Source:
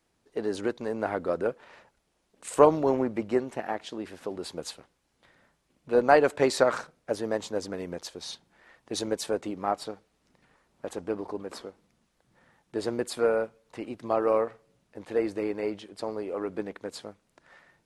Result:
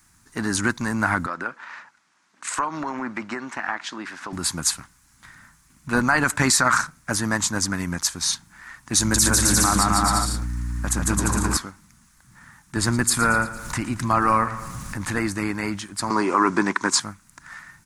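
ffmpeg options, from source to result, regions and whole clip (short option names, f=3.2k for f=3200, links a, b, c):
-filter_complex "[0:a]asettb=1/sr,asplit=3[a][b][c];[a]atrim=end=1.264[d];[b]atrim=start=1.26:end=4.33,asetpts=PTS-STARTPTS,afade=t=in:d=0.004:c=qsin,afade=t=out:st=3.066:d=0.004:c=qsin,highpass=360,lowpass=4.1k,acompressor=threshold=-30dB:ratio=4:attack=3.2:release=140:knee=1:detection=peak[e];[c]atrim=start=4.326[f];[d][e]acrossfade=d=0.004:c1=hsin:c2=qsin[g];[g][f]acrossfade=d=0.004:c1=qsin:c2=hsin,asettb=1/sr,asplit=3[h][i][j];[h]atrim=end=8.994[k];[i]atrim=start=8.99:end=11.57,asetpts=PTS-STARTPTS,afade=t=in:d=0.004:c=qsin,afade=t=out:st=2.576:d=0.004:c=qsin,bass=f=250:g=3,treble=f=4k:g=4,aeval=exprs='val(0)+0.00501*(sin(2*PI*60*n/s)+sin(2*PI*2*60*n/s)/2+sin(2*PI*3*60*n/s)/3+sin(2*PI*4*60*n/s)/4+sin(2*PI*5*60*n/s)/5)':c=same,aecho=1:1:150|262.5|346.9|410.2|457.6|493.2|519.9:0.794|0.631|0.501|0.398|0.316|0.251|0.2,atrim=end_sample=113778[l];[j]atrim=start=11.566[m];[k][l]acrossfade=d=0.004:c1=hsin:c2=qsin[n];[n][m]acrossfade=d=0.004:c1=qsin:c2=hsin,asettb=1/sr,asplit=3[o][p][q];[o]atrim=end=12.764[r];[p]atrim=start=12.76:end=15.19,asetpts=PTS-STARTPTS,afade=t=in:d=0.004:c=qsin,afade=t=out:st=2.426:d=0.004:c=qsin,lowshelf=f=90:g=9,acompressor=mode=upward:threshold=-32dB:ratio=2.5:attack=3.2:release=140:knee=2.83:detection=peak,aecho=1:1:113|226|339|452|565|678:0.168|0.0974|0.0565|0.0328|0.019|0.011,atrim=end_sample=107163[s];[q]atrim=start=15.186[t];[r][s]acrossfade=d=0.004:c1=hsin:c2=qsin[u];[u][t]acrossfade=d=0.004:c1=qsin:c2=hsin,asettb=1/sr,asplit=3[v][w][x];[v]atrim=end=16.104[y];[w]atrim=start=16.1:end=17,asetpts=PTS-STARTPTS,afade=t=in:d=0.004:c=qsin,afade=t=out:st=0.896:d=0.004:c=qsin,acontrast=78,highpass=220,equalizer=f=370:t=q:w=4:g=9,equalizer=f=1k:t=q:w=4:g=9,equalizer=f=5.6k:t=q:w=4:g=4,lowpass=f=8.6k:w=0.5412,lowpass=f=8.6k:w=1.3066[z];[x]atrim=start=16.996[aa];[y][z]acrossfade=d=0.004:c1=hsin:c2=qsin[ab];[ab][aa]acrossfade=d=0.004:c1=qsin:c2=hsin,firequalizer=gain_entry='entry(110,0);entry(280,-8);entry(450,-26);entry(990,-3);entry(1500,1);entry(3000,-9);entry(6500,5)':delay=0.05:min_phase=1,alimiter=level_in=23.5dB:limit=-1dB:release=50:level=0:latency=1,volume=-6.5dB"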